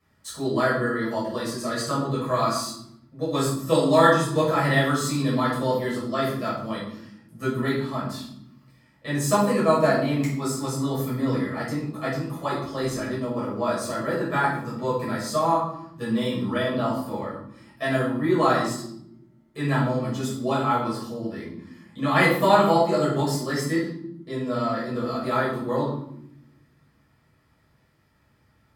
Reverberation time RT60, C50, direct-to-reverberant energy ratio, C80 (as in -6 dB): 0.85 s, 3.0 dB, -9.0 dB, 7.0 dB